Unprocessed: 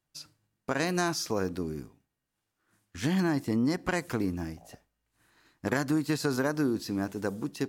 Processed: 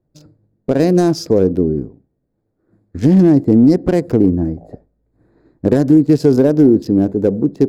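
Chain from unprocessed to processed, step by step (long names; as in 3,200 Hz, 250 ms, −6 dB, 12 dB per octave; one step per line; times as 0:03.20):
adaptive Wiener filter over 15 samples
dynamic equaliser 5,000 Hz, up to +7 dB, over −60 dBFS, Q 6.8
hard clipping −22 dBFS, distortion −18 dB
low shelf with overshoot 730 Hz +13 dB, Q 1.5
level +4 dB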